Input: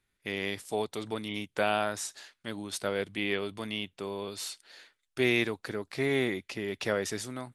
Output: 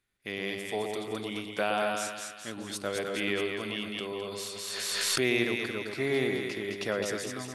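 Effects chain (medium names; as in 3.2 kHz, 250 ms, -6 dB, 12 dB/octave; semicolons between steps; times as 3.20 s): bass shelf 110 Hz -4.5 dB; band-stop 890 Hz, Q 17; two-band feedback delay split 1.2 kHz, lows 118 ms, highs 212 ms, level -4 dB; 3.01–5.32 s: swell ahead of each attack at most 21 dB/s; trim -1.5 dB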